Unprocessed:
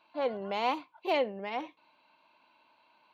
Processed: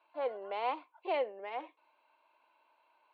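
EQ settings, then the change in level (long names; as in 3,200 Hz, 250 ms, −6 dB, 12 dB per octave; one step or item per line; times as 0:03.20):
high-pass filter 370 Hz 24 dB per octave
high-frequency loss of the air 330 metres
−2.5 dB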